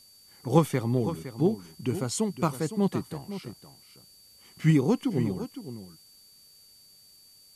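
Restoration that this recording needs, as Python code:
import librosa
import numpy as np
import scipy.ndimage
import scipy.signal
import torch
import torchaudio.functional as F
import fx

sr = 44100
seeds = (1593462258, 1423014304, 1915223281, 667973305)

y = fx.notch(x, sr, hz=4600.0, q=30.0)
y = fx.noise_reduce(y, sr, print_start_s=6.05, print_end_s=6.55, reduce_db=16.0)
y = fx.fix_echo_inverse(y, sr, delay_ms=511, level_db=-12.0)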